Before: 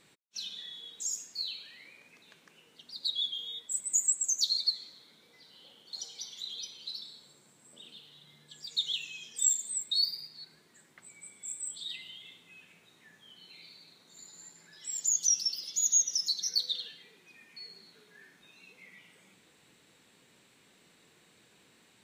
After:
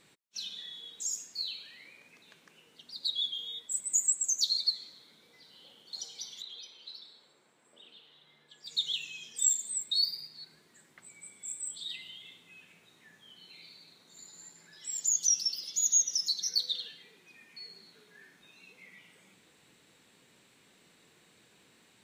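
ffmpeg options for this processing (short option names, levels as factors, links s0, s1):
-filter_complex "[0:a]asettb=1/sr,asplit=3[s0][s1][s2];[s0]atrim=end=6.424[s3];[s1]atrim=start=6.42:end=8.66,asetpts=PTS-STARTPTS,afade=t=in:d=0.004:c=qsin,afade=t=out:st=2.236:d=0.004:c=qsin,bass=f=250:g=-13,treble=f=4000:g=-12[s4];[s2]atrim=start=8.656[s5];[s3][s4]acrossfade=d=0.004:c1=hsin:c2=qsin[s6];[s6][s5]acrossfade=d=0.004:c1=qsin:c2=hsin"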